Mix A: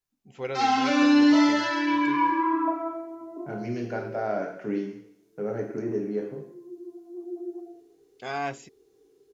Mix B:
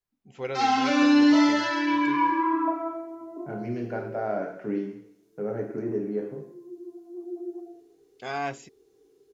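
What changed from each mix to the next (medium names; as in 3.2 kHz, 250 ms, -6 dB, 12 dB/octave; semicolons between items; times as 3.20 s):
second voice: add low-pass 2 kHz 6 dB/octave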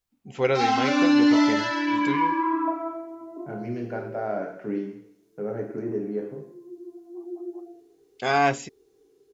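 first voice +10.0 dB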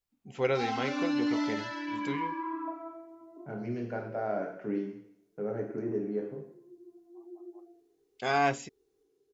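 first voice -5.5 dB; second voice -3.5 dB; background -11.5 dB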